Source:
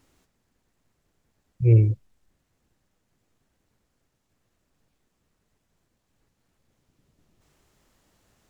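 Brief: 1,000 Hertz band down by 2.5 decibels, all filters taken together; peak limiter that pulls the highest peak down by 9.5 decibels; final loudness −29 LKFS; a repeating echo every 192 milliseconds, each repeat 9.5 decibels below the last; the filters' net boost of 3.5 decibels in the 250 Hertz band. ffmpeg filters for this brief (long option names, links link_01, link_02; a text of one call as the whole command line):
ffmpeg -i in.wav -af "equalizer=frequency=250:width_type=o:gain=7,equalizer=frequency=1000:width_type=o:gain=-4.5,alimiter=limit=-14dB:level=0:latency=1,aecho=1:1:192|384|576|768:0.335|0.111|0.0365|0.012,volume=-4.5dB" out.wav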